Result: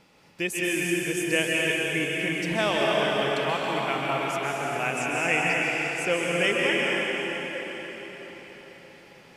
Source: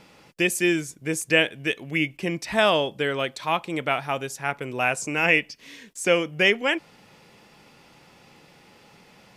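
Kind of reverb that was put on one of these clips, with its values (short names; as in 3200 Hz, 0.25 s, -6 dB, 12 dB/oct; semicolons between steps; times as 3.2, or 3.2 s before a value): plate-style reverb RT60 4.9 s, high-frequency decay 0.9×, pre-delay 0.12 s, DRR -4.5 dB; gain -6.5 dB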